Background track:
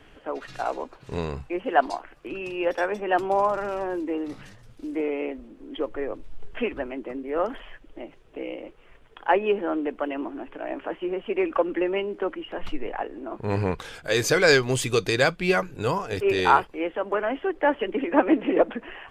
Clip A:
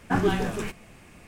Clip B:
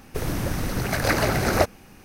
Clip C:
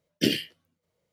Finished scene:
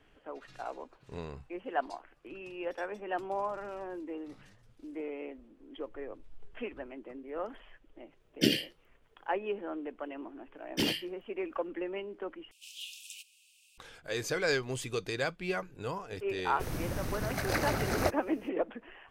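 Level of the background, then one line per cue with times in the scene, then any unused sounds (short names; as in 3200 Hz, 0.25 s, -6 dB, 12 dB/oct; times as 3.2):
background track -12 dB
8.2 add C -2.5 dB
10.56 add C -2 dB + soft clip -21 dBFS
12.51 replace with A -3.5 dB + steep high-pass 2600 Hz 96 dB/oct
16.45 add B -9.5 dB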